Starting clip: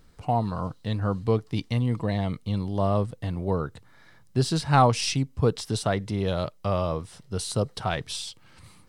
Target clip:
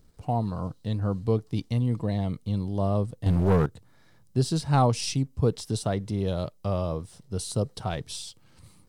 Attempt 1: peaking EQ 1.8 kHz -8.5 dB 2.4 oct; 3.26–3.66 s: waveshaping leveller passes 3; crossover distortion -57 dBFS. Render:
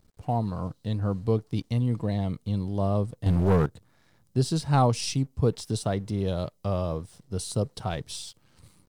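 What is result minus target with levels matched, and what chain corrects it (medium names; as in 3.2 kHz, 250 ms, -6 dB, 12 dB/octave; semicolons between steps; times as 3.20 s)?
crossover distortion: distortion +9 dB
peaking EQ 1.8 kHz -8.5 dB 2.4 oct; 3.26–3.66 s: waveshaping leveller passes 3; crossover distortion -66 dBFS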